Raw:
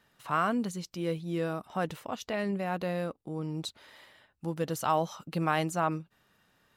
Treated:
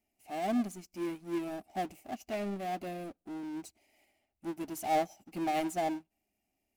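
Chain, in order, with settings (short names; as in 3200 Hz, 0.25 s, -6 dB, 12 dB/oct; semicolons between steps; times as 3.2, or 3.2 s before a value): elliptic band-stop 790–2200 Hz; fixed phaser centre 740 Hz, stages 8; power-law curve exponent 0.5; on a send at -21 dB: reverb RT60 0.65 s, pre-delay 72 ms; on the sum: upward expander 2.5:1, over -48 dBFS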